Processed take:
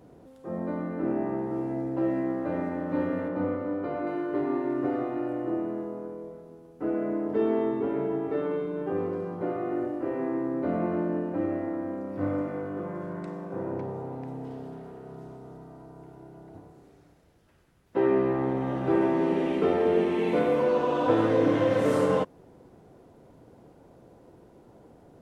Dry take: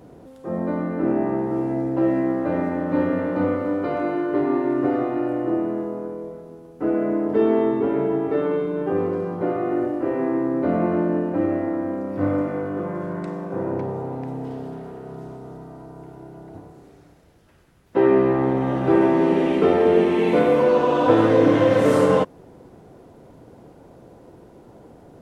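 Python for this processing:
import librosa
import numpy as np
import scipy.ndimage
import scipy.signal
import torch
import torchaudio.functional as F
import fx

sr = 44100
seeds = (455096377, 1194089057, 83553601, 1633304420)

y = fx.high_shelf(x, sr, hz=2900.0, db=-9.0, at=(3.28, 4.07))
y = F.gain(torch.from_numpy(y), -7.0).numpy()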